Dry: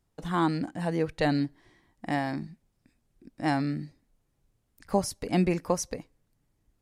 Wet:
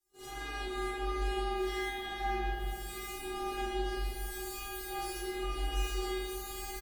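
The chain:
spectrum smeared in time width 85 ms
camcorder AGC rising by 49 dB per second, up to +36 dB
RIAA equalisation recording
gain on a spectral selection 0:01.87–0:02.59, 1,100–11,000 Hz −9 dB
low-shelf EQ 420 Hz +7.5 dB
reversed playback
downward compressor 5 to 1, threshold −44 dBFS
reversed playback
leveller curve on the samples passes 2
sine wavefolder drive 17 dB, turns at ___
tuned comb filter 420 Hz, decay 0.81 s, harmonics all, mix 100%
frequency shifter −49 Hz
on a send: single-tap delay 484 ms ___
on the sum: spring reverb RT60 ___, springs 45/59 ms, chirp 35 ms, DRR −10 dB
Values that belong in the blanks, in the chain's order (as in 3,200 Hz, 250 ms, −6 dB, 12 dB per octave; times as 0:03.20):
−21 dBFS, −13.5 dB, 2.3 s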